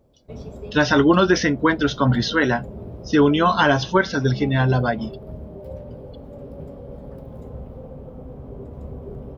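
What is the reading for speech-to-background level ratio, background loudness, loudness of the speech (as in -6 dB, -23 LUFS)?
18.0 dB, -37.0 LUFS, -19.0 LUFS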